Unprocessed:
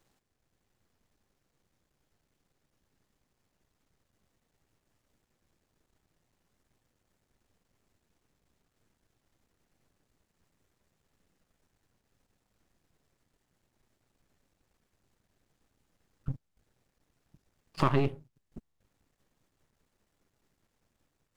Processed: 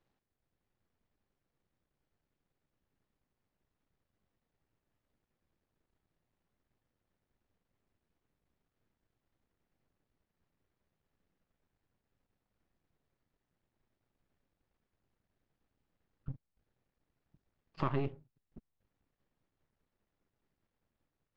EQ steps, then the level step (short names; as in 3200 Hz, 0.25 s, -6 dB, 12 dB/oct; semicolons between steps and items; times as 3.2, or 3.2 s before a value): air absorption 180 m; -7.0 dB